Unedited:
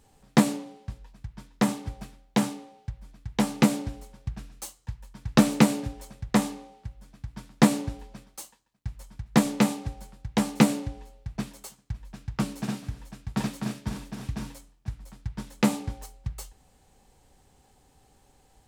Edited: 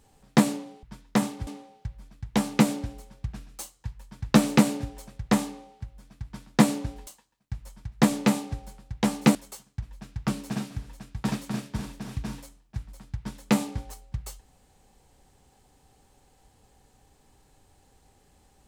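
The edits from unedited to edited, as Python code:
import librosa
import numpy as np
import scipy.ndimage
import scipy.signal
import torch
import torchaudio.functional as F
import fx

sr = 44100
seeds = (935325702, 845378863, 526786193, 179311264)

y = fx.edit(x, sr, fx.cut(start_s=0.83, length_s=0.46),
    fx.cut(start_s=1.93, length_s=0.57),
    fx.cut(start_s=8.1, length_s=0.31),
    fx.cut(start_s=10.69, length_s=0.78), tone=tone)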